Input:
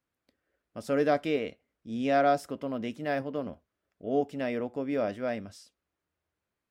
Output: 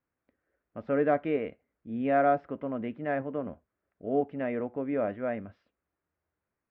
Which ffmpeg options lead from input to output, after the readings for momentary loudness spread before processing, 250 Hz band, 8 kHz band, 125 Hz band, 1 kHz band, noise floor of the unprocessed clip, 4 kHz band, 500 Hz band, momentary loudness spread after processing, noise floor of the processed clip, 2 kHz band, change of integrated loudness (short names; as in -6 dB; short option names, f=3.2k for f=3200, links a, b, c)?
15 LU, 0.0 dB, n/a, 0.0 dB, 0.0 dB, under -85 dBFS, under -10 dB, 0.0 dB, 15 LU, under -85 dBFS, -1.0 dB, 0.0 dB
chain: -af "lowpass=f=2.2k:w=0.5412,lowpass=f=2.2k:w=1.3066"